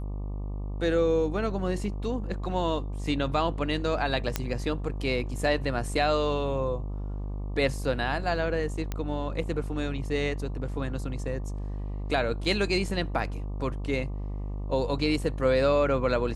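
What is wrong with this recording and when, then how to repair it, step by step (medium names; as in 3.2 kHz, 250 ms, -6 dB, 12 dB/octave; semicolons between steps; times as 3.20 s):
buzz 50 Hz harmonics 24 -33 dBFS
4.36 s: pop -10 dBFS
8.92 s: pop -17 dBFS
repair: de-click; de-hum 50 Hz, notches 24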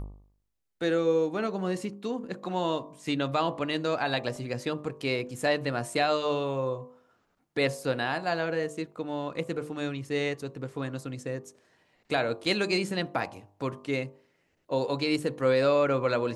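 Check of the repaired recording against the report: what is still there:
nothing left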